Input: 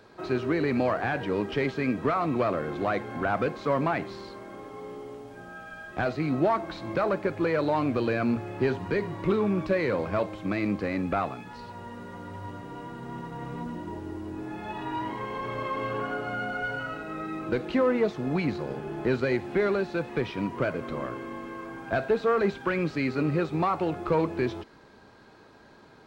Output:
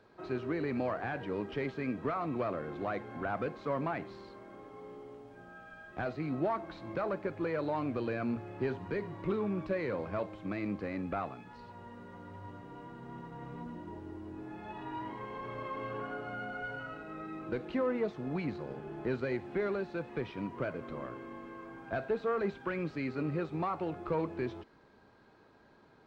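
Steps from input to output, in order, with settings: treble shelf 4.8 kHz -9.5 dB; trim -8 dB

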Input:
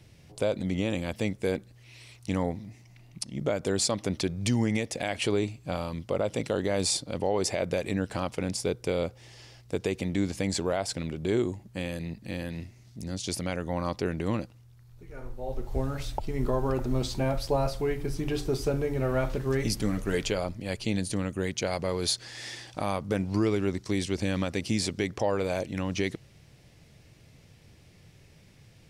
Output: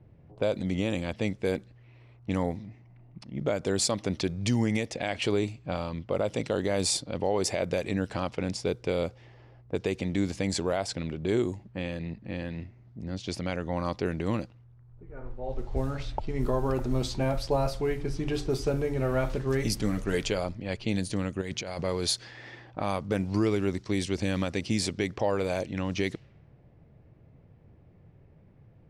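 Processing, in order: level-controlled noise filter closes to 900 Hz, open at -23.5 dBFS; 21.41–21.82 s: compressor with a negative ratio -35 dBFS, ratio -1

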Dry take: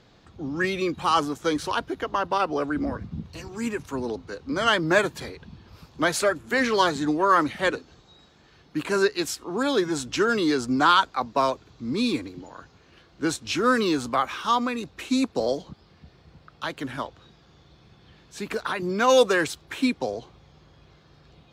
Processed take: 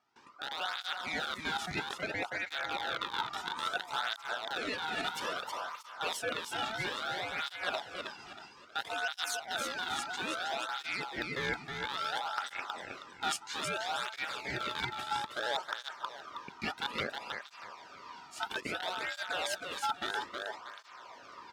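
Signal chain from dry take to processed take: rattle on loud lows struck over -34 dBFS, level -12 dBFS; gate with hold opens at -46 dBFS; reverse; compression 4:1, threshold -37 dBFS, peak gain reduction 19.5 dB; reverse; ring modulator 1.1 kHz; gain riding within 3 dB 0.5 s; feedback delay 318 ms, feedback 32%, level -5 dB; cancelling through-zero flanger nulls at 0.6 Hz, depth 2 ms; trim +7 dB

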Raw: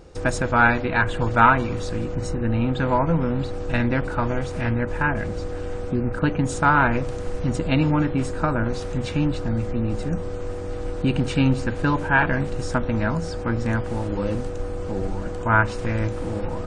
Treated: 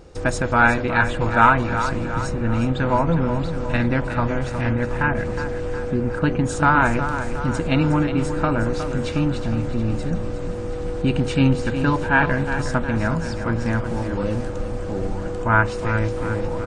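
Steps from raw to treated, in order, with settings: feedback delay 363 ms, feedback 55%, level -10 dB; trim +1 dB

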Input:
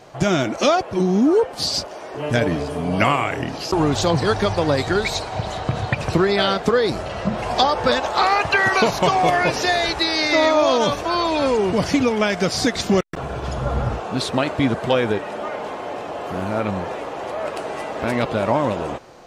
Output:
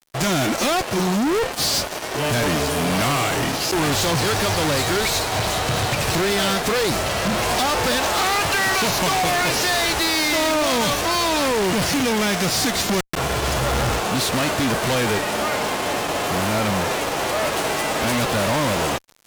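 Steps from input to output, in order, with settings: formants flattened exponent 0.6; fuzz box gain 29 dB, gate -37 dBFS; trim -5 dB

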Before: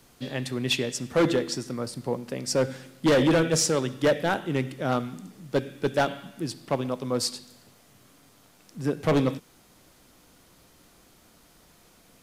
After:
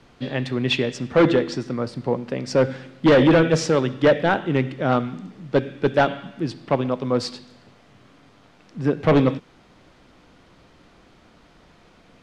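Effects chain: low-pass 3.3 kHz 12 dB/octave; trim +6 dB

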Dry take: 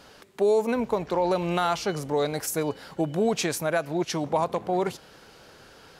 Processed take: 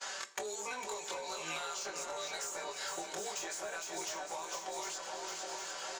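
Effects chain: short-time spectra conjugated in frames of 48 ms; expander -47 dBFS; high-pass 910 Hz 12 dB/octave; comb 5.2 ms, depth 74%; compression 12:1, threshold -43 dBFS, peak gain reduction 18.5 dB; resonant low-pass 7 kHz, resonance Q 5.7; FDN reverb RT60 0.62 s, high-frequency decay 0.8×, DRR 12.5 dB; saturation -39 dBFS, distortion -10 dB; shuffle delay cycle 753 ms, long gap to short 1.5:1, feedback 43%, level -8 dB; three bands compressed up and down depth 100%; trim +5 dB

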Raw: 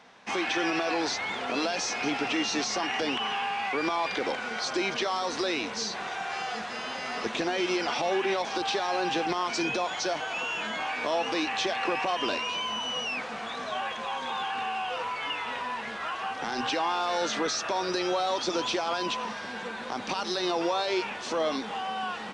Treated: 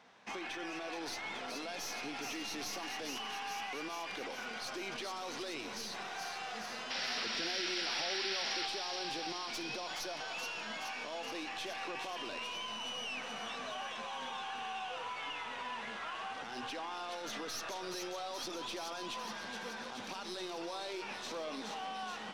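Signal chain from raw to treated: tracing distortion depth 0.023 ms; peak limiter -26.5 dBFS, peak gain reduction 10.5 dB; painted sound noise, 6.90–8.66 s, 1.3–5.8 kHz -32 dBFS; on a send: feedback echo behind a high-pass 424 ms, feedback 72%, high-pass 3.2 kHz, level -3.5 dB; on the sum: spring tank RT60 3.2 s, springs 51/59 ms, chirp 65 ms, DRR 13.5 dB; trim -7.5 dB

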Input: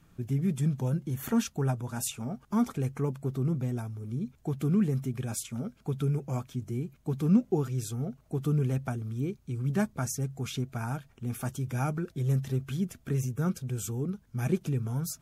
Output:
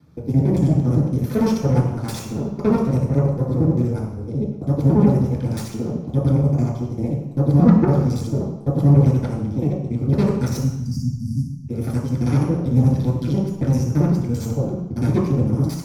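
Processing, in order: time reversed locally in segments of 54 ms; Chebyshev shaper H 8 -13 dB, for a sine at -13 dBFS; spectral selection erased 10.16–11.21 s, 300–4700 Hz; speed mistake 25 fps video run at 24 fps; reverberation RT60 0.85 s, pre-delay 3 ms, DRR -4.5 dB; trim -7 dB

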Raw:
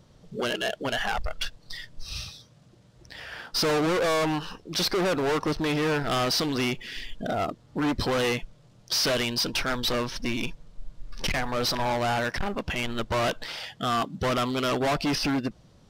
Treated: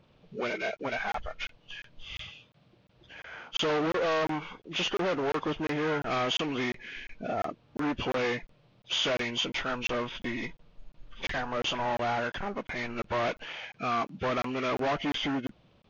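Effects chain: knee-point frequency compression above 1.3 kHz 1.5:1; bass shelf 160 Hz -8.5 dB; crackling interface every 0.35 s, samples 1024, zero, from 0.77 s; trim -2.5 dB

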